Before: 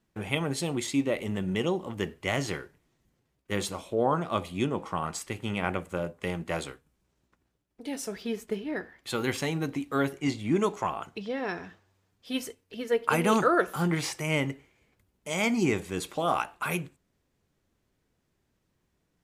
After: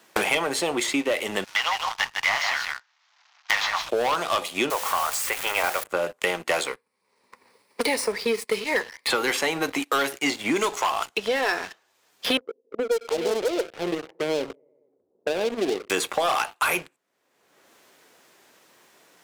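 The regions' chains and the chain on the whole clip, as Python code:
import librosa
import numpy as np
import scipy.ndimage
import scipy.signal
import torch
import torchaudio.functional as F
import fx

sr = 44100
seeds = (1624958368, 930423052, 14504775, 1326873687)

y = fx.chain(x, sr, fx.cvsd(bps=32000),
    fx.steep_highpass(hz=810.0, slope=36),
    fx.echo_single(ms=153, db=-6.5), at=(1.44, 3.89))
y = fx.chain(y, sr, fx.crossing_spikes(level_db=-25.0),
    fx.highpass(hz=510.0, slope=24), at=(4.7, 5.84))
y = fx.chain(y, sr, fx.median_filter(points=3),
    fx.ripple_eq(per_octave=0.91, db=11), at=(6.67, 9.1))
y = fx.chain(y, sr, fx.ladder_lowpass(hz=550.0, resonance_pct=50),
    fx.echo_feedback(ms=91, feedback_pct=60, wet_db=-20.5),
    fx.doppler_dist(depth_ms=0.16), at=(12.37, 15.9))
y = scipy.signal.sosfilt(scipy.signal.butter(2, 540.0, 'highpass', fs=sr, output='sos'), y)
y = fx.leveller(y, sr, passes=3)
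y = fx.band_squash(y, sr, depth_pct=100)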